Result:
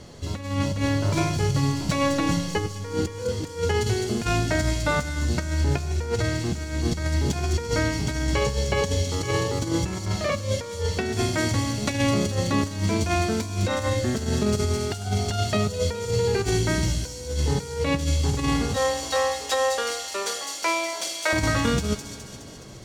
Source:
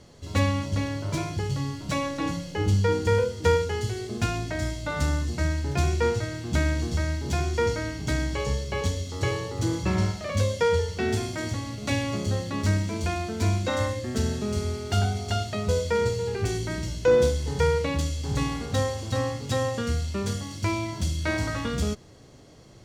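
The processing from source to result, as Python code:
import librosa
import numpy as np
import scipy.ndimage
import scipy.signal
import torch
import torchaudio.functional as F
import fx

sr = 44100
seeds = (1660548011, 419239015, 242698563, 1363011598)

y = fx.highpass(x, sr, hz=470.0, slope=24, at=(18.76, 21.33))
y = fx.over_compress(y, sr, threshold_db=-28.0, ratio=-0.5)
y = fx.echo_wet_highpass(y, sr, ms=209, feedback_pct=61, hz=5200.0, wet_db=-3)
y = fx.rev_spring(y, sr, rt60_s=3.4, pass_ms=(39, 50), chirp_ms=35, drr_db=15.0)
y = y * librosa.db_to_amplitude(4.5)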